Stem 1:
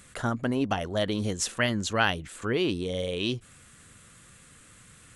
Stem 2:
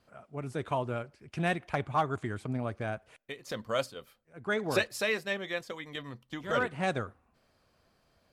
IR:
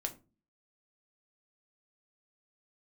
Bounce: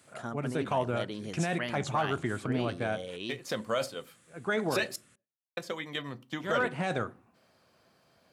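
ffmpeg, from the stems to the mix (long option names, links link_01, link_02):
-filter_complex "[0:a]volume=-9.5dB[link_01];[1:a]volume=1.5dB,asplit=3[link_02][link_03][link_04];[link_02]atrim=end=4.96,asetpts=PTS-STARTPTS,afade=type=out:start_time=4.956:duration=0.004:curve=hsin[link_05];[link_03]atrim=start=4.96:end=5.57,asetpts=PTS-STARTPTS,volume=0[link_06];[link_04]atrim=start=5.57,asetpts=PTS-STARTPTS,afade=type=in:duration=0.004:curve=hsin[link_07];[link_05][link_06][link_07]concat=n=3:v=0:a=1,asplit=2[link_08][link_09];[link_09]volume=-7.5dB[link_10];[2:a]atrim=start_sample=2205[link_11];[link_10][link_11]afir=irnorm=-1:irlink=0[link_12];[link_01][link_08][link_12]amix=inputs=3:normalize=0,highpass=130,alimiter=limit=-19.5dB:level=0:latency=1:release=16"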